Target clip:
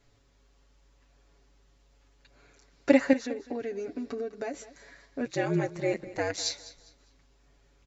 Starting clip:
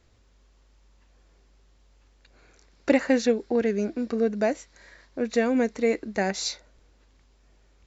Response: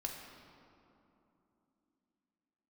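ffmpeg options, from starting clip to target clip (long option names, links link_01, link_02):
-filter_complex "[0:a]aecho=1:1:7.1:0.84,asettb=1/sr,asplit=3[link_01][link_02][link_03];[link_01]atrim=end=3.134[link_04];[link_02]atrim=start=3.13:end=4.54,asetpts=PTS-STARTPTS,afade=type=in:duration=0.004:curve=qsin,afade=type=out:start_time=1.406:duration=0.004:curve=qsin,acompressor=threshold=-28dB:ratio=6[link_05];[link_03]atrim=start=4.536[link_06];[link_04][link_05]acrossfade=duration=0.004:curve1=hsin:curve2=qsin[link_07];[link_07][link_06]acrossfade=duration=0.004:curve1=qsin:curve2=hsin,asplit=3[link_08][link_09][link_10];[link_08]afade=type=out:start_time=5.25:duration=0.02[link_11];[link_09]aeval=exprs='val(0)*sin(2*PI*93*n/s)':channel_layout=same,afade=type=in:start_time=5.25:duration=0.02,afade=type=out:start_time=6.36:duration=0.02[link_12];[link_10]afade=type=in:start_time=6.36:duration=0.02[link_13];[link_11][link_12][link_13]amix=inputs=3:normalize=0,aecho=1:1:202|404|606:0.141|0.0424|0.0127,volume=-4dB"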